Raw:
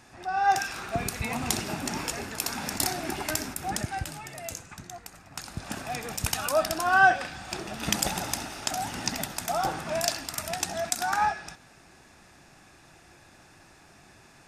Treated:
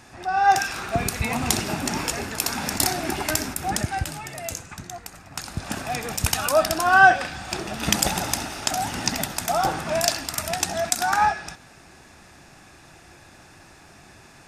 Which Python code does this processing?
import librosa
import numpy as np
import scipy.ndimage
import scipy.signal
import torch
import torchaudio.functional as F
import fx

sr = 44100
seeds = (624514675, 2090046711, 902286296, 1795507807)

y = fx.peak_eq(x, sr, hz=75.0, db=2.5, octaves=0.77)
y = F.gain(torch.from_numpy(y), 5.5).numpy()